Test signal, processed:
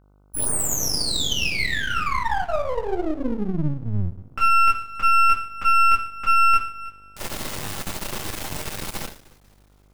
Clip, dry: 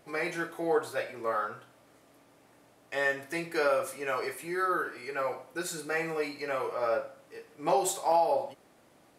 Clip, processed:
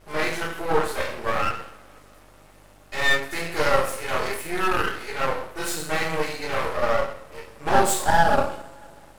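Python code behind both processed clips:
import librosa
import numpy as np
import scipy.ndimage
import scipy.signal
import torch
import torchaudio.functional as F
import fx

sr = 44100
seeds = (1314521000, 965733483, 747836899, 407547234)

y = fx.rev_double_slope(x, sr, seeds[0], early_s=0.46, late_s=2.7, knee_db=-26, drr_db=-7.5)
y = np.maximum(y, 0.0)
y = fx.dmg_buzz(y, sr, base_hz=50.0, harmonics=30, level_db=-60.0, tilt_db=-6, odd_only=False)
y = F.gain(torch.from_numpy(y), 3.5).numpy()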